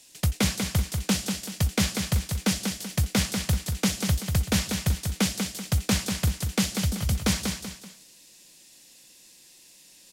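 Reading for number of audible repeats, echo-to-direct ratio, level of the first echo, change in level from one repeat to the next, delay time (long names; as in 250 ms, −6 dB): 3, −5.0 dB, −5.5 dB, −8.5 dB, 191 ms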